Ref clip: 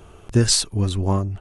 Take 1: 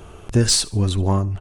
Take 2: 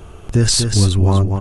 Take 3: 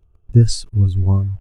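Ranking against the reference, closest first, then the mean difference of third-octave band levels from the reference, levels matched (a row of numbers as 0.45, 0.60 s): 1, 2, 3; 2.5, 4.5, 10.0 dB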